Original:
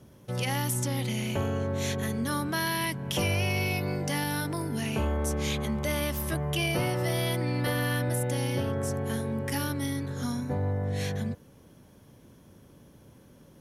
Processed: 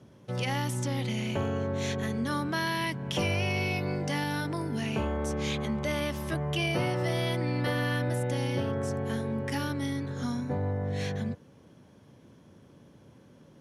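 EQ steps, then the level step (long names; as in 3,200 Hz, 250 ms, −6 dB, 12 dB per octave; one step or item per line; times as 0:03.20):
high-pass filter 89 Hz
high-frequency loss of the air 62 metres
0.0 dB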